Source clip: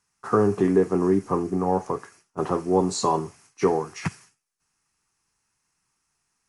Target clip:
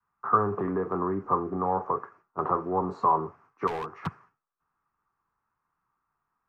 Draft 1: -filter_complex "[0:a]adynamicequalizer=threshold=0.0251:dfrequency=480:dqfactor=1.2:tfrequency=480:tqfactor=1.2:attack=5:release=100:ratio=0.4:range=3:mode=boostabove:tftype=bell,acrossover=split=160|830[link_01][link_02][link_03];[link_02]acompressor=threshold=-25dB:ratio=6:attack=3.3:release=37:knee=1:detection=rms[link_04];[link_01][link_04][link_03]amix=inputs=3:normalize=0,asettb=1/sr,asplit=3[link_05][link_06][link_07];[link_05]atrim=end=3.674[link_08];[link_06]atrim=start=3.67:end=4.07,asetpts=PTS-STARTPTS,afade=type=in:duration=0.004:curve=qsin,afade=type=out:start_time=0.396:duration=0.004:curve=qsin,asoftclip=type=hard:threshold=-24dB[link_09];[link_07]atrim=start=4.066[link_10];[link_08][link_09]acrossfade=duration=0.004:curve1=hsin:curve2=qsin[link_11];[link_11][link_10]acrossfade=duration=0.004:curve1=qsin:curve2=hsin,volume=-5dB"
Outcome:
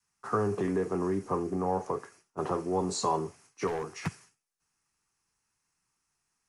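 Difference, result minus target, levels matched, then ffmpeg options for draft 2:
1,000 Hz band −4.0 dB
-filter_complex "[0:a]adynamicequalizer=threshold=0.0251:dfrequency=480:dqfactor=1.2:tfrequency=480:tqfactor=1.2:attack=5:release=100:ratio=0.4:range=3:mode=boostabove:tftype=bell,lowpass=frequency=1200:width_type=q:width=3.4,acrossover=split=160|830[link_01][link_02][link_03];[link_02]acompressor=threshold=-25dB:ratio=6:attack=3.3:release=37:knee=1:detection=rms[link_04];[link_01][link_04][link_03]amix=inputs=3:normalize=0,asettb=1/sr,asplit=3[link_05][link_06][link_07];[link_05]atrim=end=3.674[link_08];[link_06]atrim=start=3.67:end=4.07,asetpts=PTS-STARTPTS,afade=type=in:duration=0.004:curve=qsin,afade=type=out:start_time=0.396:duration=0.004:curve=qsin,asoftclip=type=hard:threshold=-24dB[link_09];[link_07]atrim=start=4.066[link_10];[link_08][link_09]acrossfade=duration=0.004:curve1=hsin:curve2=qsin[link_11];[link_11][link_10]acrossfade=duration=0.004:curve1=qsin:curve2=hsin,volume=-5dB"

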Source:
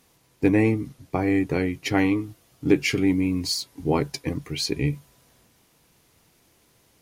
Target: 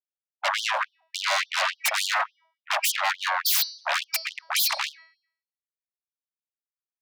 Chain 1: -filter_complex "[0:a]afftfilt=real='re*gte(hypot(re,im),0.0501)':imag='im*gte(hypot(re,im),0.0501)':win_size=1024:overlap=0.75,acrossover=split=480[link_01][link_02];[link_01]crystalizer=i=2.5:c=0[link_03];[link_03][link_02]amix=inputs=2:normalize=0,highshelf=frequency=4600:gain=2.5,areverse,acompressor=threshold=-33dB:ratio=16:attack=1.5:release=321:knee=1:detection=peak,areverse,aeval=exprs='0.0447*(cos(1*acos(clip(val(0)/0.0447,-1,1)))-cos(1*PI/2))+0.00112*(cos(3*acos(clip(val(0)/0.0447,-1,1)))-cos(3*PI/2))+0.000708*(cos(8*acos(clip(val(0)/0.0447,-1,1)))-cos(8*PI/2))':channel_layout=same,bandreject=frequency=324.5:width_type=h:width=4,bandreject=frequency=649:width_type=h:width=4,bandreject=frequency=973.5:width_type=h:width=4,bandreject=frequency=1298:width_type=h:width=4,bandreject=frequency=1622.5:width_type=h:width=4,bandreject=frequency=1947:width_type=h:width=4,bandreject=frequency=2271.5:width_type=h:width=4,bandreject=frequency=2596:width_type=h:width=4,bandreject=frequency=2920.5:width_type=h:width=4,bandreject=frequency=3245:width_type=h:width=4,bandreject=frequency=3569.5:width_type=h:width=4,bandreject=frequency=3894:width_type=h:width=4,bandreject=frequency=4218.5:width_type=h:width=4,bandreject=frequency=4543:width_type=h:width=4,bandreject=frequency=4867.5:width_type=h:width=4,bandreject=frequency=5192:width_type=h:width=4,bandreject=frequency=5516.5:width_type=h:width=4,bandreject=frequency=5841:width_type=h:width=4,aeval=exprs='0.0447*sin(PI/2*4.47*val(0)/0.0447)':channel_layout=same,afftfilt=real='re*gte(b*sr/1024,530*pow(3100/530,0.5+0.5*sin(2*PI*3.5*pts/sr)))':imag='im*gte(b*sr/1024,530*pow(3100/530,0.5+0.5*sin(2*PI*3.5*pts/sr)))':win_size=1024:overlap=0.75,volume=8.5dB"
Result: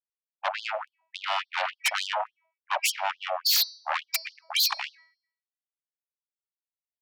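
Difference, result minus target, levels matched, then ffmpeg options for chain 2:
downward compressor: peak gain reduction +6 dB
-filter_complex "[0:a]afftfilt=real='re*gte(hypot(re,im),0.0501)':imag='im*gte(hypot(re,im),0.0501)':win_size=1024:overlap=0.75,acrossover=split=480[link_01][link_02];[link_01]crystalizer=i=2.5:c=0[link_03];[link_03][link_02]amix=inputs=2:normalize=0,highshelf=frequency=4600:gain=2.5,areverse,acompressor=threshold=-26.5dB:ratio=16:attack=1.5:release=321:knee=1:detection=peak,areverse,aeval=exprs='0.0447*(cos(1*acos(clip(val(0)/0.0447,-1,1)))-cos(1*PI/2))+0.00112*(cos(3*acos(clip(val(0)/0.0447,-1,1)))-cos(3*PI/2))+0.000708*(cos(8*acos(clip(val(0)/0.0447,-1,1)))-cos(8*PI/2))':channel_layout=same,bandreject=frequency=324.5:width_type=h:width=4,bandreject=frequency=649:width_type=h:width=4,bandreject=frequency=973.5:width_type=h:width=4,bandreject=frequency=1298:width_type=h:width=4,bandreject=frequency=1622.5:width_type=h:width=4,bandreject=frequency=1947:width_type=h:width=4,bandreject=frequency=2271.5:width_type=h:width=4,bandreject=frequency=2596:width_type=h:width=4,bandreject=frequency=2920.5:width_type=h:width=4,bandreject=frequency=3245:width_type=h:width=4,bandreject=frequency=3569.5:width_type=h:width=4,bandreject=frequency=3894:width_type=h:width=4,bandreject=frequency=4218.5:width_type=h:width=4,bandreject=frequency=4543:width_type=h:width=4,bandreject=frequency=4867.5:width_type=h:width=4,bandreject=frequency=5192:width_type=h:width=4,bandreject=frequency=5516.5:width_type=h:width=4,bandreject=frequency=5841:width_type=h:width=4,aeval=exprs='0.0447*sin(PI/2*4.47*val(0)/0.0447)':channel_layout=same,afftfilt=real='re*gte(b*sr/1024,530*pow(3100/530,0.5+0.5*sin(2*PI*3.5*pts/sr)))':imag='im*gte(b*sr/1024,530*pow(3100/530,0.5+0.5*sin(2*PI*3.5*pts/sr)))':win_size=1024:overlap=0.75,volume=8.5dB"

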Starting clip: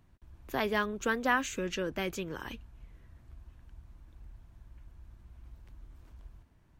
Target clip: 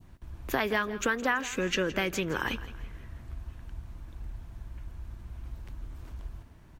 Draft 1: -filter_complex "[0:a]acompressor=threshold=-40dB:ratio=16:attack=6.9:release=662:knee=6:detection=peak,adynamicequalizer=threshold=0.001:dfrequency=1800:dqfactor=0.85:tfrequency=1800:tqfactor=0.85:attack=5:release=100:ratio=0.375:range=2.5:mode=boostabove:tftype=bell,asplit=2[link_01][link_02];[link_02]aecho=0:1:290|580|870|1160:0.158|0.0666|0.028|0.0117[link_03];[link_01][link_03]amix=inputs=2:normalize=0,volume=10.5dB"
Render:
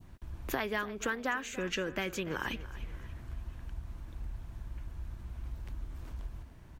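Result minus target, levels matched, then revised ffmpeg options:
echo 125 ms late; downward compressor: peak gain reduction +5.5 dB
-filter_complex "[0:a]acompressor=threshold=-34dB:ratio=16:attack=6.9:release=662:knee=6:detection=peak,adynamicequalizer=threshold=0.001:dfrequency=1800:dqfactor=0.85:tfrequency=1800:tqfactor=0.85:attack=5:release=100:ratio=0.375:range=2.5:mode=boostabove:tftype=bell,asplit=2[link_01][link_02];[link_02]aecho=0:1:165|330|495|660:0.158|0.0666|0.028|0.0117[link_03];[link_01][link_03]amix=inputs=2:normalize=0,volume=10.5dB"

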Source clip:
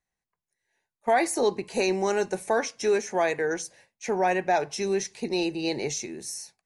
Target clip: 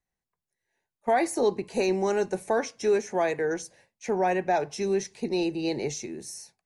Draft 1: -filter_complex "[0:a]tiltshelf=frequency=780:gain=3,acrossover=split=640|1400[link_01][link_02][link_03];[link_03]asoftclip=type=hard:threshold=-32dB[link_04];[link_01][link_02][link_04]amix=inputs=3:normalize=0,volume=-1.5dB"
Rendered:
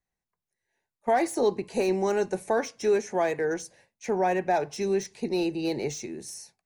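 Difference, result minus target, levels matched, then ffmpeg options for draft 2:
hard clipping: distortion +26 dB
-filter_complex "[0:a]tiltshelf=frequency=780:gain=3,acrossover=split=640|1400[link_01][link_02][link_03];[link_03]asoftclip=type=hard:threshold=-23.5dB[link_04];[link_01][link_02][link_04]amix=inputs=3:normalize=0,volume=-1.5dB"

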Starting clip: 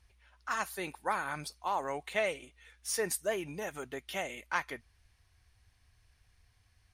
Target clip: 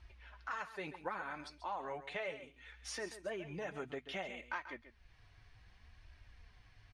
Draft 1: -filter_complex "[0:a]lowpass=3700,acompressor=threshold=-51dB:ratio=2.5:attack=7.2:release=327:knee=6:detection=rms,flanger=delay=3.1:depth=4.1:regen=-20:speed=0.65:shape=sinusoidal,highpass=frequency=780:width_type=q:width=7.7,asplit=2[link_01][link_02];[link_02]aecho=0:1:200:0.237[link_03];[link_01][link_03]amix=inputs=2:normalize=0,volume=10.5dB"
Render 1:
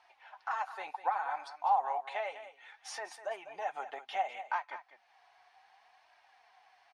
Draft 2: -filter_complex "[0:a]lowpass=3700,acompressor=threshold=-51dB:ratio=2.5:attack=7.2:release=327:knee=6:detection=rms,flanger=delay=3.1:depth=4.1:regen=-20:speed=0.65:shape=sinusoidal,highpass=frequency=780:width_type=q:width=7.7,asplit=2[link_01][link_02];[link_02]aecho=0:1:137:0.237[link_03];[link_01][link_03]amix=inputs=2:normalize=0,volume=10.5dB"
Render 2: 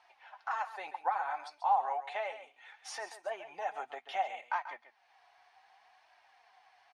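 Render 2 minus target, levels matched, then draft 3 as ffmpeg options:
1,000 Hz band +5.0 dB
-filter_complex "[0:a]lowpass=3700,acompressor=threshold=-51dB:ratio=2.5:attack=7.2:release=327:knee=6:detection=rms,flanger=delay=3.1:depth=4.1:regen=-20:speed=0.65:shape=sinusoidal,asplit=2[link_01][link_02];[link_02]aecho=0:1:137:0.237[link_03];[link_01][link_03]amix=inputs=2:normalize=0,volume=10.5dB"

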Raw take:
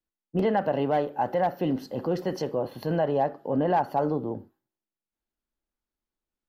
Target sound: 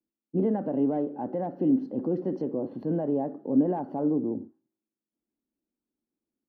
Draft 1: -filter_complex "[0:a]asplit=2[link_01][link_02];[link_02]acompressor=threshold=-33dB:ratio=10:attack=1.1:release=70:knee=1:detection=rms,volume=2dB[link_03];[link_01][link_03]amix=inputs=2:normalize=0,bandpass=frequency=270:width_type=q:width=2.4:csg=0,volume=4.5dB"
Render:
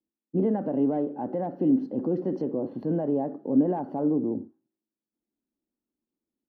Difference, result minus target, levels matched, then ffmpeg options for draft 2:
downward compressor: peak gain reduction −6 dB
-filter_complex "[0:a]asplit=2[link_01][link_02];[link_02]acompressor=threshold=-39.5dB:ratio=10:attack=1.1:release=70:knee=1:detection=rms,volume=2dB[link_03];[link_01][link_03]amix=inputs=2:normalize=0,bandpass=frequency=270:width_type=q:width=2.4:csg=0,volume=4.5dB"

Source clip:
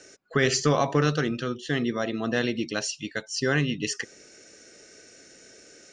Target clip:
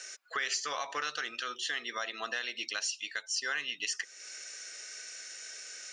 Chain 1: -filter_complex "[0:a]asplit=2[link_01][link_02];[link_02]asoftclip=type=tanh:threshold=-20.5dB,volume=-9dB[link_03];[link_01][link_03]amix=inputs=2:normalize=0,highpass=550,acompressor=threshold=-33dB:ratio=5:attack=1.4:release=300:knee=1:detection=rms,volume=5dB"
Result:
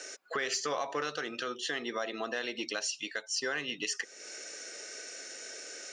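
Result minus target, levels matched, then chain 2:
500 Hz band +9.0 dB; soft clipping: distortion +13 dB
-filter_complex "[0:a]asplit=2[link_01][link_02];[link_02]asoftclip=type=tanh:threshold=-10.5dB,volume=-9dB[link_03];[link_01][link_03]amix=inputs=2:normalize=0,highpass=1300,acompressor=threshold=-33dB:ratio=5:attack=1.4:release=300:knee=1:detection=rms,volume=5dB"

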